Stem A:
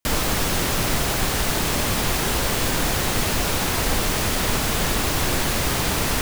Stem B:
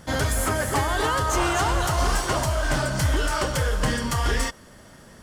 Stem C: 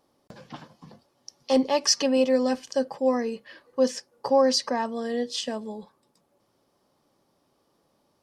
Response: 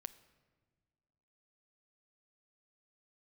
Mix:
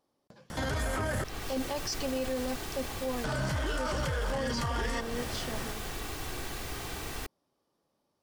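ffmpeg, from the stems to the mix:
-filter_complex "[0:a]aecho=1:1:2.6:0.38,adelay=1050,volume=-16.5dB[a];[1:a]acontrast=36,adelay=500,volume=1.5dB,asplit=3[b][c][d];[b]atrim=end=1.24,asetpts=PTS-STARTPTS,afade=t=out:st=1.236:d=0.004:c=hsin[e];[c]atrim=start=1.24:end=3.24,asetpts=PTS-STARTPTS,volume=0[f];[d]atrim=start=3.24,asetpts=PTS-STARTPTS,afade=t=in:d=0.004:c=hsin[g];[e][f][g]concat=n=3:v=0:a=1[h];[2:a]volume=-9.5dB[i];[a][h]amix=inputs=2:normalize=0,acrossover=split=230|1100|4800[j][k][l][m];[j]acompressor=threshold=-25dB:ratio=4[n];[k]acompressor=threshold=-28dB:ratio=4[o];[l]acompressor=threshold=-31dB:ratio=4[p];[m]acompressor=threshold=-43dB:ratio=4[q];[n][o][p][q]amix=inputs=4:normalize=0,alimiter=limit=-20dB:level=0:latency=1:release=13,volume=0dB[r];[i][r]amix=inputs=2:normalize=0,alimiter=limit=-24dB:level=0:latency=1:release=15"

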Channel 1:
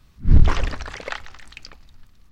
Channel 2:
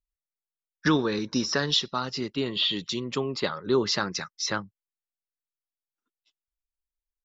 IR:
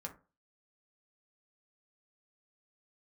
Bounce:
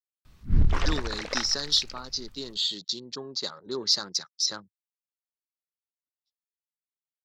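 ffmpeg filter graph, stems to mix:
-filter_complex "[0:a]acompressor=threshold=-15dB:ratio=4,adelay=250,volume=-1.5dB[a];[1:a]highpass=f=200:p=1,afwtdn=0.01,highshelf=f=3.4k:t=q:w=3:g=9,volume=-9dB[b];[a][b]amix=inputs=2:normalize=0"

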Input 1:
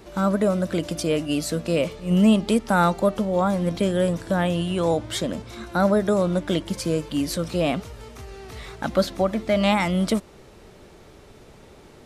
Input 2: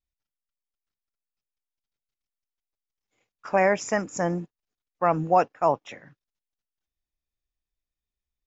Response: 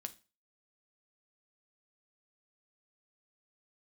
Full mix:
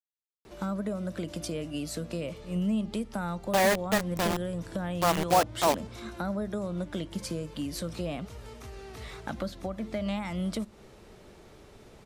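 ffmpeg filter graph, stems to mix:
-filter_complex "[0:a]acrossover=split=140[a][b];[b]acompressor=threshold=-28dB:ratio=6[c];[a][c]amix=inputs=2:normalize=0,adelay=450,volume=-7dB,asplit=2[d][e];[e]volume=-5.5dB[f];[1:a]acrusher=bits=3:mix=0:aa=0.000001,volume=-3.5dB[g];[2:a]atrim=start_sample=2205[h];[f][h]afir=irnorm=-1:irlink=0[i];[d][g][i]amix=inputs=3:normalize=0"

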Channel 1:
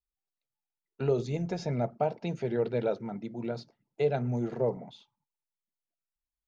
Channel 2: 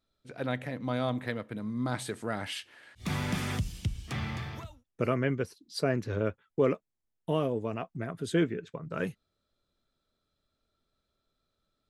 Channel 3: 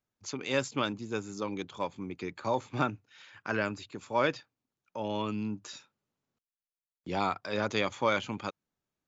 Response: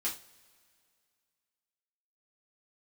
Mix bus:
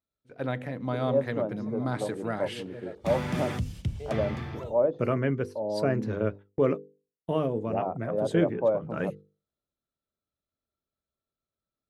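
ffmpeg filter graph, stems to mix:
-filter_complex "[0:a]volume=-12dB[a];[1:a]highpass=44,volume=3dB[b];[2:a]lowpass=f=620:t=q:w=3.5,adelay=600,volume=-2.5dB[c];[a][b][c]amix=inputs=3:normalize=0,agate=range=-13dB:threshold=-41dB:ratio=16:detection=peak,highshelf=f=2k:g=-8.5,bandreject=f=50:t=h:w=6,bandreject=f=100:t=h:w=6,bandreject=f=150:t=h:w=6,bandreject=f=200:t=h:w=6,bandreject=f=250:t=h:w=6,bandreject=f=300:t=h:w=6,bandreject=f=350:t=h:w=6,bandreject=f=400:t=h:w=6,bandreject=f=450:t=h:w=6,bandreject=f=500:t=h:w=6"

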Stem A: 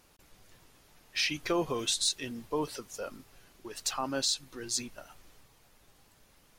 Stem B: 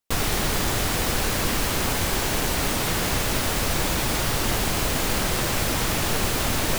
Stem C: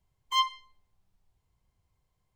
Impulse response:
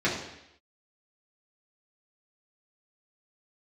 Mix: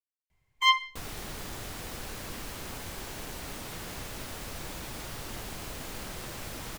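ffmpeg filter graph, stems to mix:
-filter_complex "[1:a]adelay=850,volume=-16dB[a];[2:a]equalizer=f=2.1k:t=o:w=0.6:g=11.5,adelay=300,volume=1dB[b];[a][b]amix=inputs=2:normalize=0"

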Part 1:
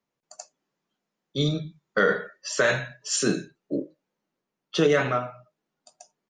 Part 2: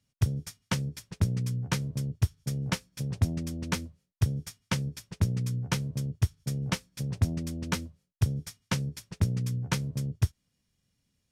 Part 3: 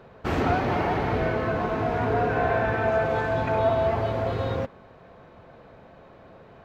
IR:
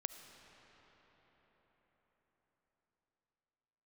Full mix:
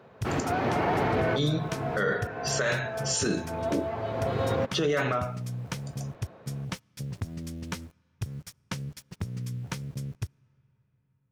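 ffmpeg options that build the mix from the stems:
-filter_complex "[0:a]volume=2dB,asplit=2[a][b];[1:a]acompressor=threshold=-27dB:ratio=6,aeval=exprs='val(0)*gte(abs(val(0)),0.00398)':c=same,volume=-3dB,asplit=2[c][d];[d]volume=-20dB[e];[2:a]highpass=98,dynaudnorm=f=110:g=13:m=11.5dB,volume=-3.5dB[f];[b]apad=whole_len=293168[g];[f][g]sidechaincompress=threshold=-35dB:ratio=12:attack=9.7:release=965[h];[a][h]amix=inputs=2:normalize=0,alimiter=limit=-13.5dB:level=0:latency=1:release=19,volume=0dB[i];[3:a]atrim=start_sample=2205[j];[e][j]afir=irnorm=-1:irlink=0[k];[c][i][k]amix=inputs=3:normalize=0,alimiter=limit=-17.5dB:level=0:latency=1:release=136"

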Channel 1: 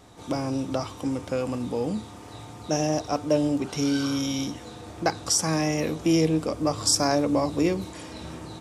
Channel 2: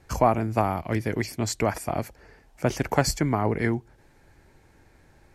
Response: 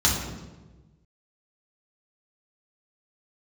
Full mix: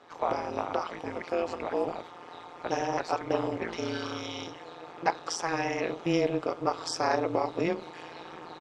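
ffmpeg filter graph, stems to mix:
-filter_complex "[0:a]aecho=1:1:2.4:0.68,volume=3dB[a];[1:a]volume=-4.5dB[b];[a][b]amix=inputs=2:normalize=0,highpass=480,lowpass=2.9k,tremolo=f=170:d=0.947"

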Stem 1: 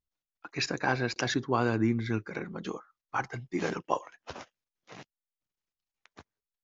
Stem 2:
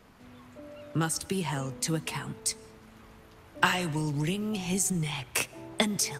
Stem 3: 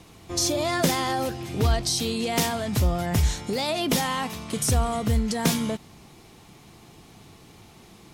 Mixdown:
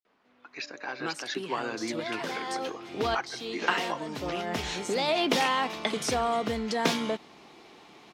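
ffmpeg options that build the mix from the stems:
-filter_complex "[0:a]highshelf=f=2.4k:g=11.5,alimiter=limit=-17dB:level=0:latency=1:release=420,volume=-9dB,asplit=2[a][b];[1:a]adelay=50,volume=-9.5dB[c];[2:a]adelay=1400,volume=-5.5dB[d];[b]apad=whole_len=420495[e];[d][e]sidechaincompress=threshold=-48dB:ratio=8:attack=21:release=495[f];[a][c][f]amix=inputs=3:normalize=0,acrossover=split=250 5200:gain=0.0708 1 0.126[g][h][i];[g][h][i]amix=inputs=3:normalize=0,dynaudnorm=f=150:g=11:m=7dB"

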